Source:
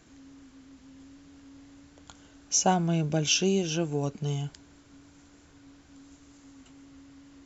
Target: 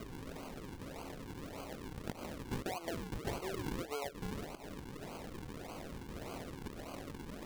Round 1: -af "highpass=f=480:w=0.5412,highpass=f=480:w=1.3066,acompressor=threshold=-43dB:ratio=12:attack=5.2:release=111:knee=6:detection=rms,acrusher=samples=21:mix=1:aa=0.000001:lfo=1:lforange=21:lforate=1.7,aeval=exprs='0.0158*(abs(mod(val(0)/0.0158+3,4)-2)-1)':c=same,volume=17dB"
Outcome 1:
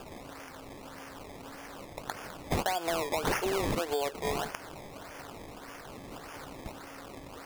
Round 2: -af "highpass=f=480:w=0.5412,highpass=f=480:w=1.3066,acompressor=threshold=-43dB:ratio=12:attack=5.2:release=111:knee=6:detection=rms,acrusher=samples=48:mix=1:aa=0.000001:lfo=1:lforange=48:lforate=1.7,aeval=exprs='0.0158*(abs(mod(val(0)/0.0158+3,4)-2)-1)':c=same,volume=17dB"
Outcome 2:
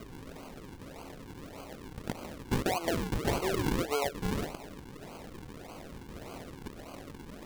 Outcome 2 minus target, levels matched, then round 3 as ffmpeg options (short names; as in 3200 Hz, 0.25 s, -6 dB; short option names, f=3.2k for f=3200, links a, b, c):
compressor: peak gain reduction -9.5 dB
-af "highpass=f=480:w=0.5412,highpass=f=480:w=1.3066,acompressor=threshold=-53.5dB:ratio=12:attack=5.2:release=111:knee=6:detection=rms,acrusher=samples=48:mix=1:aa=0.000001:lfo=1:lforange=48:lforate=1.7,aeval=exprs='0.0158*(abs(mod(val(0)/0.0158+3,4)-2)-1)':c=same,volume=17dB"